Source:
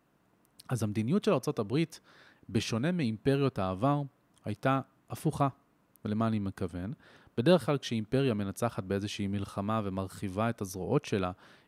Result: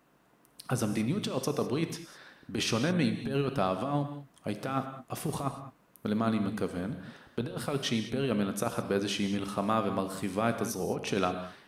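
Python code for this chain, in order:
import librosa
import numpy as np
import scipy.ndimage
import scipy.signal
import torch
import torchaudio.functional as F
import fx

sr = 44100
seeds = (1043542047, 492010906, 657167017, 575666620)

y = fx.low_shelf(x, sr, hz=240.0, db=-5.0)
y = fx.over_compress(y, sr, threshold_db=-31.0, ratio=-0.5)
y = fx.peak_eq(y, sr, hz=98.0, db=-12.5, octaves=0.23)
y = fx.rev_gated(y, sr, seeds[0], gate_ms=230, shape='flat', drr_db=7.5)
y = y * 10.0 ** (3.5 / 20.0)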